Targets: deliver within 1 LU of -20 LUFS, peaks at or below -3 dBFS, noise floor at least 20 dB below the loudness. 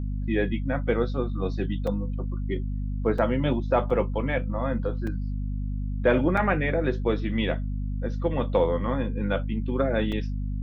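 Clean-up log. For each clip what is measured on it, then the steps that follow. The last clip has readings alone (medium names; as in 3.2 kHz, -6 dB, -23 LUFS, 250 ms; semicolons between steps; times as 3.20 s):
dropouts 6; longest dropout 3.9 ms; hum 50 Hz; highest harmonic 250 Hz; hum level -26 dBFS; loudness -27.0 LUFS; peak level -8.5 dBFS; loudness target -20.0 LUFS
-> interpolate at 1.87/3.18/3.90/5.07/6.37/10.12 s, 3.9 ms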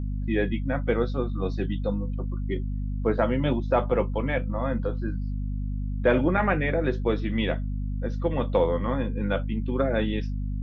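dropouts 0; hum 50 Hz; highest harmonic 250 Hz; hum level -26 dBFS
-> hum notches 50/100/150/200/250 Hz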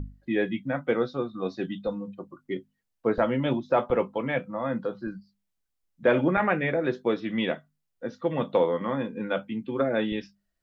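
hum not found; loudness -28.0 LUFS; peak level -9.0 dBFS; loudness target -20.0 LUFS
-> trim +8 dB; peak limiter -3 dBFS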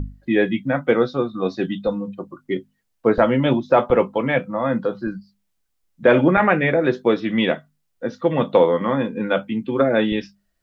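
loudness -20.0 LUFS; peak level -3.0 dBFS; noise floor -72 dBFS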